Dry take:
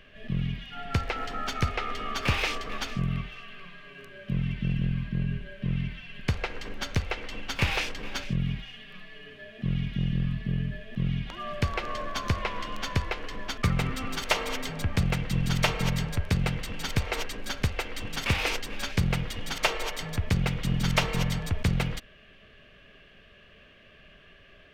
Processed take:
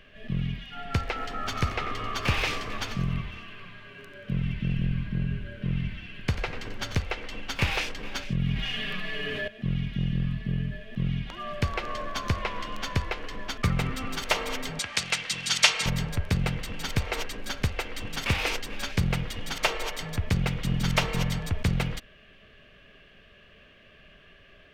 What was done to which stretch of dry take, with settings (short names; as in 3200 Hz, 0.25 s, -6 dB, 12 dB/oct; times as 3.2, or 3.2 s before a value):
1.32–6.96 frequency-shifting echo 91 ms, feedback 37%, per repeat -120 Hz, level -10 dB
8.39–9.48 fast leveller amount 70%
14.79–15.86 weighting filter ITU-R 468